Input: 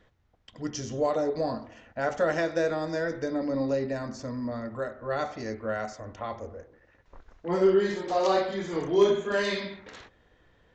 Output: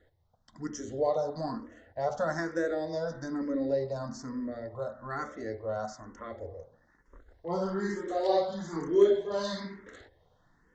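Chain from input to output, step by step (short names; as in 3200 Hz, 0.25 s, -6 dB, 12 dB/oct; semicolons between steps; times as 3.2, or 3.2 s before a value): bell 2800 Hz -12.5 dB 0.49 oct; notch 2400 Hz, Q 5.7; de-hum 59.63 Hz, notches 11; endless phaser +1.1 Hz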